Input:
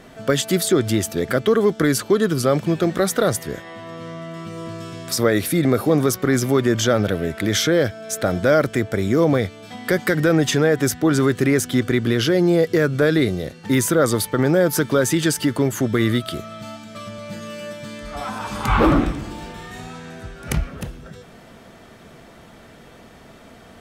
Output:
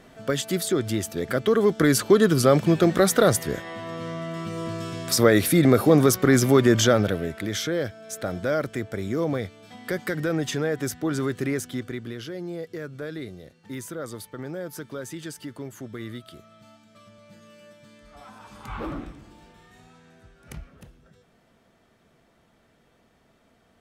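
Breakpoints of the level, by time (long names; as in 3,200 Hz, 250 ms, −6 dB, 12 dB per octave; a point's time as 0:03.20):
0:01.15 −6.5 dB
0:02.09 +0.5 dB
0:06.80 +0.5 dB
0:07.52 −9 dB
0:11.51 −9 dB
0:12.23 −17.5 dB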